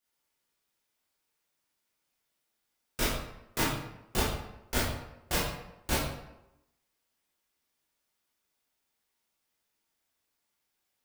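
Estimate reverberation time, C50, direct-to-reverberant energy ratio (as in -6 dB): 0.90 s, 1.0 dB, -8.0 dB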